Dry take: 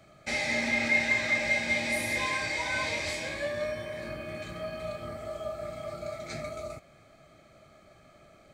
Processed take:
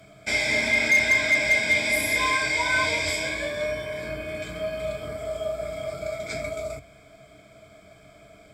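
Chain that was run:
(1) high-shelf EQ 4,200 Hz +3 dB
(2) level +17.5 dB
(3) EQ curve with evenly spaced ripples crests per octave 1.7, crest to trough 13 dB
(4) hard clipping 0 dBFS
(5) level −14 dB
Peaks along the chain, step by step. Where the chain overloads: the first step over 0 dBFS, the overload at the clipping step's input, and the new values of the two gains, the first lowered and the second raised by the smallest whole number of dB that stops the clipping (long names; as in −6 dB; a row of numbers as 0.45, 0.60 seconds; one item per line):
−13.5, +4.0, +7.0, 0.0, −14.0 dBFS
step 2, 7.0 dB
step 2 +10.5 dB, step 5 −7 dB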